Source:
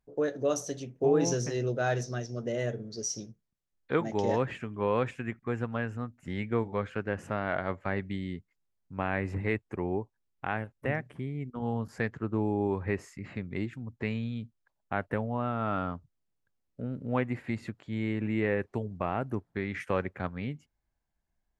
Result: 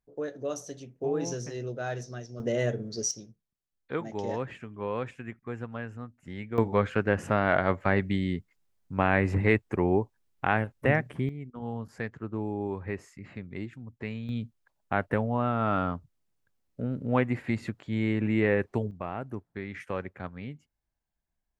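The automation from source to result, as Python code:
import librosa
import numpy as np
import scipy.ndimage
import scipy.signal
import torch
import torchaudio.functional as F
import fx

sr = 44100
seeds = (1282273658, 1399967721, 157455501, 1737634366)

y = fx.gain(x, sr, db=fx.steps((0.0, -5.0), (2.4, 4.0), (3.11, -4.5), (6.58, 7.0), (11.29, -3.5), (14.29, 4.0), (18.91, -4.0)))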